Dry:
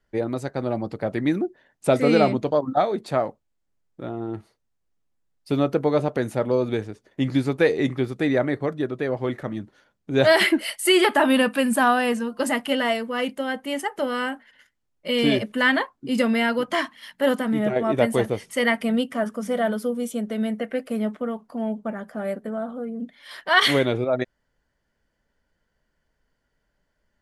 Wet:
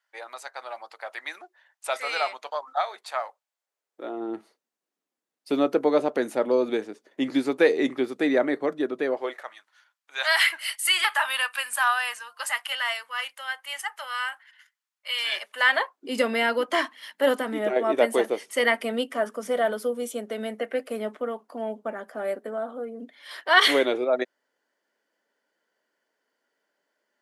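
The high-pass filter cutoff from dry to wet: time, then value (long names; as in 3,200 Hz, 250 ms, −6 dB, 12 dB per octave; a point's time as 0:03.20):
high-pass filter 24 dB per octave
0:03.26 830 Hz
0:04.32 250 Hz
0:09.07 250 Hz
0:09.56 1,000 Hz
0:15.30 1,000 Hz
0:16.16 300 Hz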